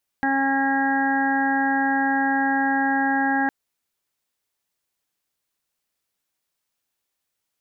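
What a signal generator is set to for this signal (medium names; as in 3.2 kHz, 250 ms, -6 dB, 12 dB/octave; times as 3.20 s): steady additive tone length 3.26 s, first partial 272 Hz, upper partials -14/0.5/-17.5/-16/-1/-8.5 dB, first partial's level -23 dB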